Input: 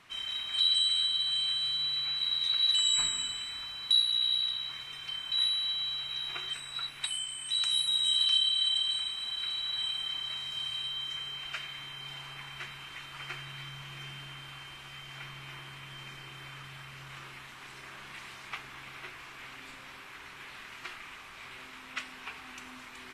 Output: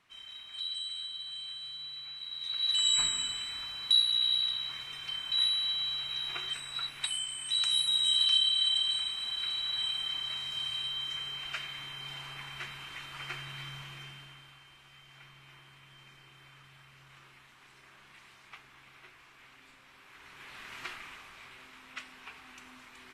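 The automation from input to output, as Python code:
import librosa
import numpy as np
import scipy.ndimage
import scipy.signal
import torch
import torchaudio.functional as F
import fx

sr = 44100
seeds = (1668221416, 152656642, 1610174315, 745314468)

y = fx.gain(x, sr, db=fx.line((2.29, -11.0), (2.87, 0.5), (13.76, 0.5), (14.6, -10.5), (19.9, -10.5), (20.8, 2.0), (21.56, -5.5)))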